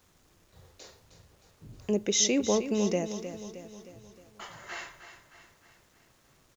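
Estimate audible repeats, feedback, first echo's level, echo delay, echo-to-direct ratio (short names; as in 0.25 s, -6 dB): 5, 52%, -11.0 dB, 0.311 s, -9.5 dB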